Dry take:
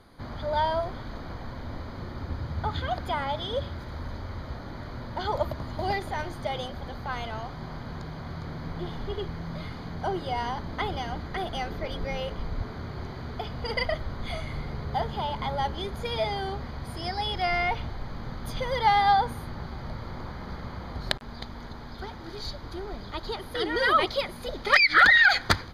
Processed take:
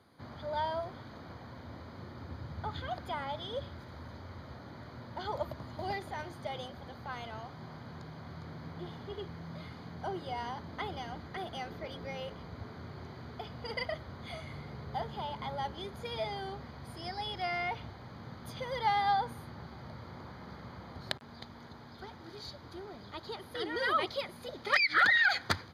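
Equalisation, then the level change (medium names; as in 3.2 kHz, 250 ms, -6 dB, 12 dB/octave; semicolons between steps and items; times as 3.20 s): high-pass 81 Hz 24 dB/octave; -8.0 dB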